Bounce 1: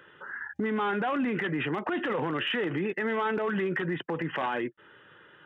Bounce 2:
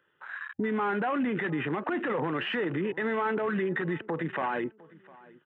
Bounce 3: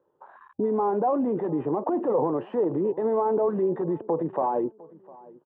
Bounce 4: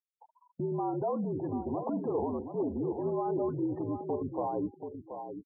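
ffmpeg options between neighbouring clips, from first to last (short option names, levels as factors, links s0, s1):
-filter_complex "[0:a]afwtdn=0.0126,asplit=2[s0][s1];[s1]adelay=705,lowpass=f=2200:p=1,volume=0.0794,asplit=2[s2][s3];[s3]adelay=705,lowpass=f=2200:p=1,volume=0.33[s4];[s0][s2][s4]amix=inputs=3:normalize=0,acrossover=split=3200[s5][s6];[s6]acompressor=threshold=0.00158:ratio=4:attack=1:release=60[s7];[s5][s7]amix=inputs=2:normalize=0"
-af "firequalizer=gain_entry='entry(190,0);entry(320,5);entry(510,9);entry(990,5);entry(1400,-16);entry(2000,-24);entry(6700,-17)':delay=0.05:min_phase=1"
-af "afreqshift=-58,aecho=1:1:730|1460:0.376|0.0601,afftfilt=real='re*gte(hypot(re,im),0.02)':imag='im*gte(hypot(re,im),0.02)':win_size=1024:overlap=0.75,volume=0.398"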